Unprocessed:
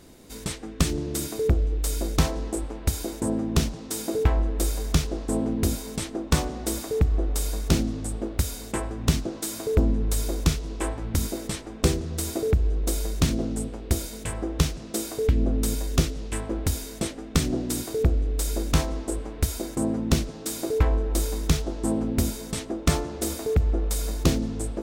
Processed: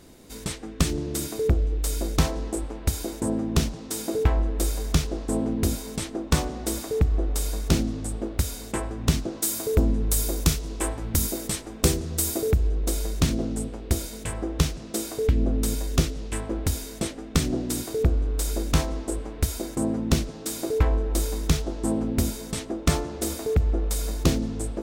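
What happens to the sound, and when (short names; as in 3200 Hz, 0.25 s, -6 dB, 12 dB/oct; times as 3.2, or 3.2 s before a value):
9.42–12.69 high shelf 7900 Hz +11.5 dB
18.02–18.52 buzz 120 Hz, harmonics 13, -53 dBFS -1 dB/oct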